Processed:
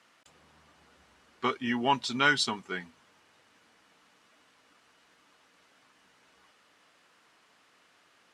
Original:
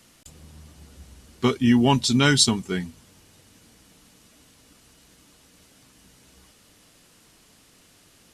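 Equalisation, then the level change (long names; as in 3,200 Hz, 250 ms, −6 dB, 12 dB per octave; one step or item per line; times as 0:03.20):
resonant band-pass 1,300 Hz, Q 0.95
0.0 dB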